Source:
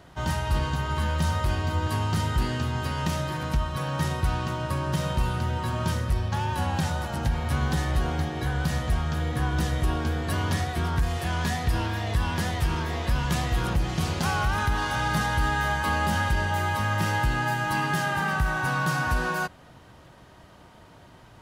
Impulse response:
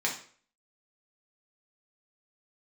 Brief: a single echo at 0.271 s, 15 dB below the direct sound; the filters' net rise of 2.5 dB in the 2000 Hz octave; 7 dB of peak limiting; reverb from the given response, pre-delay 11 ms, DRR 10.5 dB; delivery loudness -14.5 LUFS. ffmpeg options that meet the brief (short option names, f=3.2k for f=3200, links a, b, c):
-filter_complex "[0:a]equalizer=f=2k:t=o:g=3.5,alimiter=limit=-20.5dB:level=0:latency=1,aecho=1:1:271:0.178,asplit=2[a][b];[1:a]atrim=start_sample=2205,adelay=11[c];[b][c]afir=irnorm=-1:irlink=0,volume=-18.5dB[d];[a][d]amix=inputs=2:normalize=0,volume=14.5dB"